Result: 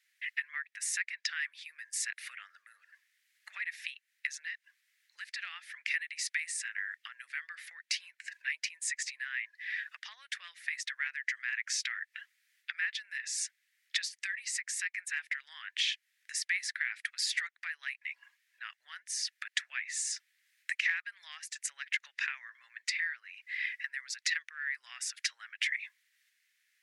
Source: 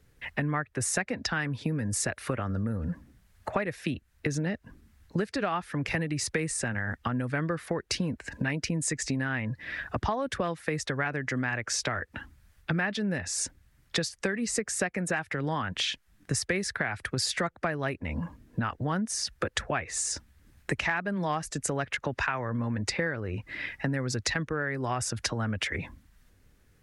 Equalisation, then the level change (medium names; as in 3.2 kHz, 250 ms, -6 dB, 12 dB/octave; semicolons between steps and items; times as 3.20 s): Chebyshev high-pass 1.9 kHz, order 4; treble shelf 2.6 kHz -11.5 dB; +6.5 dB